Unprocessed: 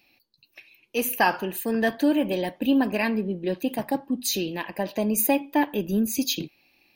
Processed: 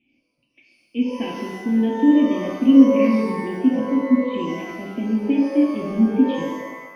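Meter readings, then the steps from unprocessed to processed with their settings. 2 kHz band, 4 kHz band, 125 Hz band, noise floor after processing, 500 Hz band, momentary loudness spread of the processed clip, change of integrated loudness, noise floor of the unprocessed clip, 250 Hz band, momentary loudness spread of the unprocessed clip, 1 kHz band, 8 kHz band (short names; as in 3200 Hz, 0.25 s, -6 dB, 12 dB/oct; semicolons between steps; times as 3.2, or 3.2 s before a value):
-4.5 dB, n/a, +3.0 dB, -70 dBFS, +3.0 dB, 14 LU, +6.0 dB, -67 dBFS, +9.0 dB, 7 LU, -2.0 dB, under -15 dB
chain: vocal tract filter i; shimmer reverb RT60 1.1 s, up +12 st, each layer -8 dB, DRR -0.5 dB; gain +7.5 dB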